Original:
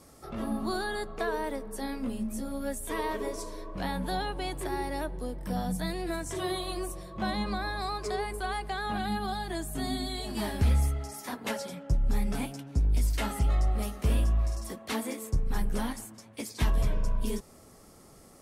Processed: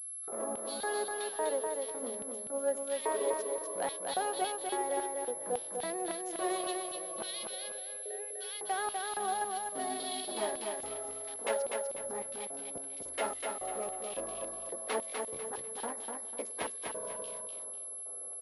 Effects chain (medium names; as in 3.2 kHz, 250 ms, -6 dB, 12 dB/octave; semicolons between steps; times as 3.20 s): local Wiener filter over 15 samples; LFO high-pass square 1.8 Hz 510–3400 Hz; 7.49–8.39 s: vowel filter e; on a send: feedback delay 248 ms, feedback 33%, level -4 dB; on the sum: class-D stage that switches slowly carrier 11 kHz; trim -2 dB